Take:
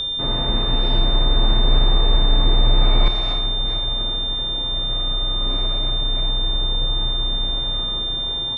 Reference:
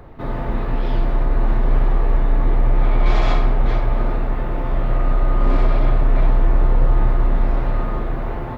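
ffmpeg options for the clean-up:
-af "bandreject=f=3600:w=30,asetnsamples=n=441:p=0,asendcmd='3.08 volume volume 8.5dB',volume=1"

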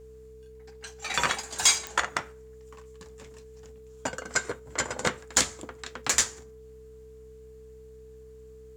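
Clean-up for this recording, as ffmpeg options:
-af "adeclick=t=4,bandreject=f=64.1:t=h:w=4,bandreject=f=128.2:t=h:w=4,bandreject=f=192.3:t=h:w=4,bandreject=f=256.4:t=h:w=4,bandreject=f=320.5:t=h:w=4,bandreject=f=440:w=30"

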